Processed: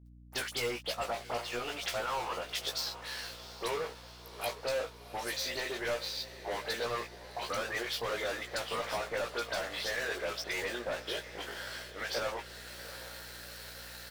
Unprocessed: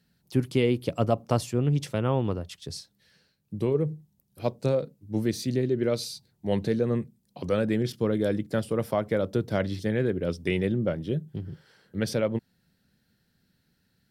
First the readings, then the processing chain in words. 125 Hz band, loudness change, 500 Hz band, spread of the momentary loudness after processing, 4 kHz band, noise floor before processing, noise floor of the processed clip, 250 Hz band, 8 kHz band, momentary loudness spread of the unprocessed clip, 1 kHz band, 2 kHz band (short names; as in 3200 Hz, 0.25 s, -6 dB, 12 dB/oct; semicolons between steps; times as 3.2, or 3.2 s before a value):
-22.5 dB, -8.5 dB, -9.5 dB, 10 LU, +4.5 dB, -72 dBFS, -51 dBFS, -20.0 dB, +1.5 dB, 12 LU, -0.5 dB, +3.0 dB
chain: HPF 750 Hz 24 dB/oct; treble ducked by the level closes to 1600 Hz, closed at -32.5 dBFS; reverse; upward compressor, threshold -50 dBFS; reverse; limiter -28.5 dBFS, peak gain reduction 10.5 dB; sample leveller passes 5; compressor 2:1, threshold -36 dBFS, peak gain reduction 3.5 dB; dispersion highs, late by 63 ms, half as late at 2600 Hz; crossover distortion -53 dBFS; hum 60 Hz, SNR 19 dB; doubler 17 ms -5 dB; on a send: diffused feedback echo 0.749 s, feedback 60%, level -14 dB